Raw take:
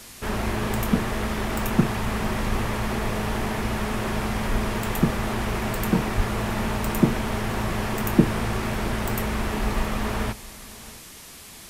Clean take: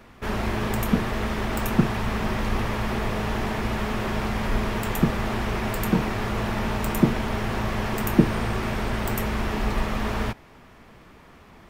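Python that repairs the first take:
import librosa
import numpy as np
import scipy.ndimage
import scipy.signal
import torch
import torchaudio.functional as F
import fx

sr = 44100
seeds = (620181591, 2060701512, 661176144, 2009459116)

y = fx.fix_deplosive(x, sr, at_s=(6.16,))
y = fx.noise_reduce(y, sr, print_start_s=11.02, print_end_s=11.52, reduce_db=7.0)
y = fx.fix_echo_inverse(y, sr, delay_ms=670, level_db=-19.5)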